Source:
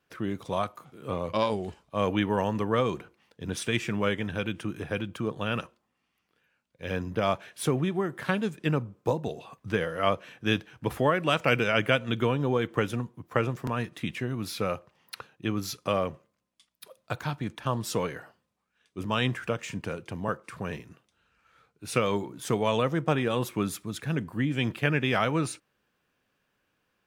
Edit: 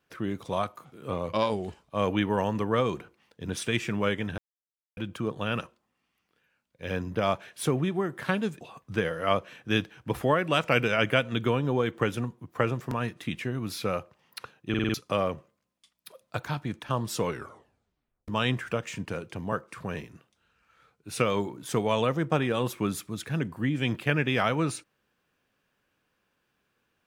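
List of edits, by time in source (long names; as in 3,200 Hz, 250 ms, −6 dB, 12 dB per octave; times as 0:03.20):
0:04.38–0:04.97: silence
0:08.61–0:09.37: remove
0:15.45: stutter in place 0.05 s, 5 plays
0:18.01: tape stop 1.03 s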